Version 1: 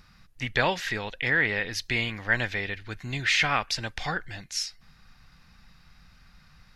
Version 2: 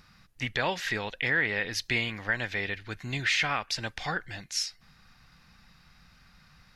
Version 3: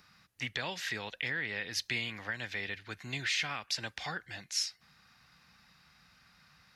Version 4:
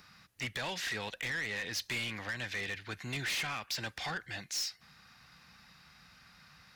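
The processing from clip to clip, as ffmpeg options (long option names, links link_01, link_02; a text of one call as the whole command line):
ffmpeg -i in.wav -af "lowshelf=frequency=62:gain=-8,alimiter=limit=-15.5dB:level=0:latency=1:release=314" out.wav
ffmpeg -i in.wav -filter_complex "[0:a]acrossover=split=280|3000[link_01][link_02][link_03];[link_02]acompressor=threshold=-35dB:ratio=3[link_04];[link_01][link_04][link_03]amix=inputs=3:normalize=0,highpass=70,lowshelf=frequency=430:gain=-6,volume=-2dB" out.wav
ffmpeg -i in.wav -af "asoftclip=type=tanh:threshold=-35.5dB,volume=4dB" out.wav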